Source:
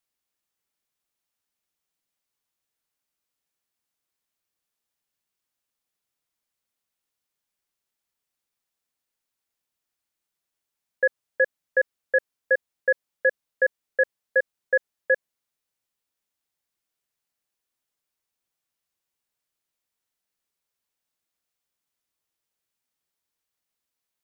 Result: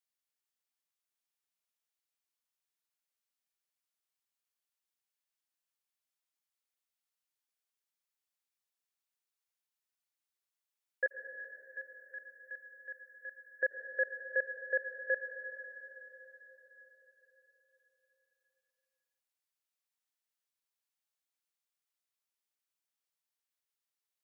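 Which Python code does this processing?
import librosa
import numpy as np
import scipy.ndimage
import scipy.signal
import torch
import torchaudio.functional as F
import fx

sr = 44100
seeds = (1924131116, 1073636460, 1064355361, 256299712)

y = fx.highpass(x, sr, hz=920.0, slope=6)
y = fx.differentiator(y, sr, at=(11.06, 13.63))
y = fx.rev_plate(y, sr, seeds[0], rt60_s=4.6, hf_ratio=0.9, predelay_ms=75, drr_db=7.0)
y = F.gain(torch.from_numpy(y), -7.5).numpy()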